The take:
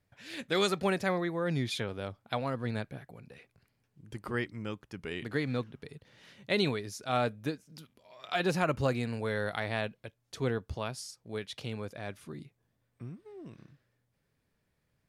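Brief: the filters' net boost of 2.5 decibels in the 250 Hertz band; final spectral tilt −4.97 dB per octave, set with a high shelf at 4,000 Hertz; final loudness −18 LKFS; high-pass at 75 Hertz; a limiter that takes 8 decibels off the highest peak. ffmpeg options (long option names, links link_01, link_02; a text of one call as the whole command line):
ffmpeg -i in.wav -af "highpass=75,equalizer=frequency=250:width_type=o:gain=3.5,highshelf=frequency=4000:gain=6,volume=17dB,alimiter=limit=-4dB:level=0:latency=1" out.wav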